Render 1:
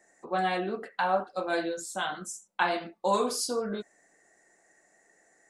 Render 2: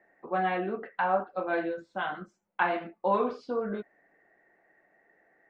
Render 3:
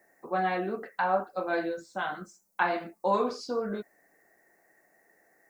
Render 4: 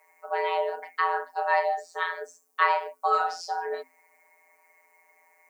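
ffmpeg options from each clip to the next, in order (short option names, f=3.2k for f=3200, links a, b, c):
-af "lowpass=f=2.6k:w=0.5412,lowpass=f=2.6k:w=1.3066"
-af "aexciter=amount=10:drive=4.6:freq=4.6k"
-af "afftfilt=real='hypot(re,im)*cos(PI*b)':imag='0':win_size=1024:overlap=0.75,afreqshift=260,volume=6.5dB"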